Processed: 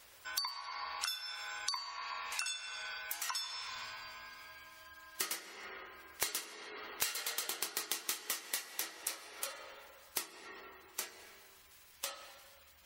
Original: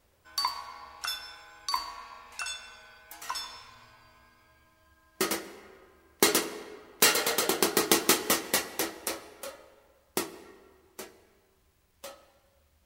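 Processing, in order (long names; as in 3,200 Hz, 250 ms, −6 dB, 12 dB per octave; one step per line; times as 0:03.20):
gate on every frequency bin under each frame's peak −30 dB strong
tilt shelving filter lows −10 dB, about 710 Hz
downward compressor 6 to 1, threshold −42 dBFS, peak gain reduction 30 dB
level +4.5 dB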